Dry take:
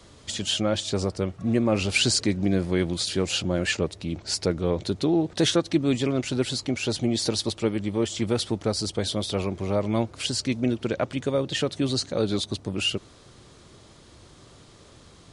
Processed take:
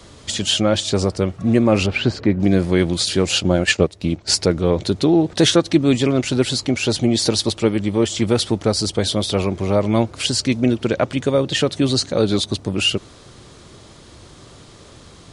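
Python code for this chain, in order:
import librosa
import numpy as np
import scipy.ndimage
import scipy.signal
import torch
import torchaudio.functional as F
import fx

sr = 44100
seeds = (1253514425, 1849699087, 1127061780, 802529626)

y = fx.lowpass(x, sr, hz=1800.0, slope=12, at=(1.86, 2.4))
y = fx.transient(y, sr, attack_db=5, sustain_db=-9, at=(3.36, 4.36))
y = y * librosa.db_to_amplitude(7.5)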